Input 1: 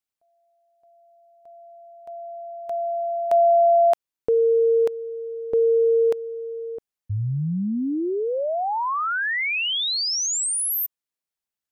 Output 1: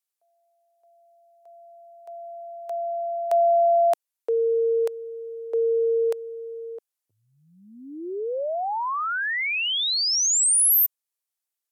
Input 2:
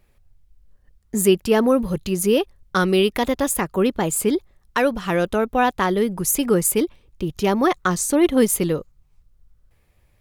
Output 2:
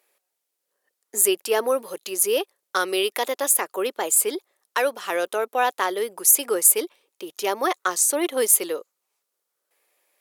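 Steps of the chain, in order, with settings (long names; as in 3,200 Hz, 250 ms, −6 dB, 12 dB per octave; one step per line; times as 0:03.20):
high-pass filter 400 Hz 24 dB per octave
parametric band 12,000 Hz +9 dB 1.7 octaves
level −2.5 dB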